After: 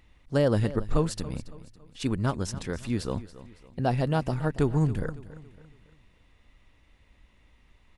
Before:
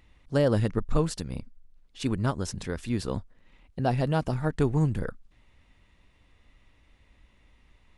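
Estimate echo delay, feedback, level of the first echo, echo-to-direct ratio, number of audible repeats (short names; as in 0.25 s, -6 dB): 0.279 s, 42%, -16.5 dB, -15.5 dB, 3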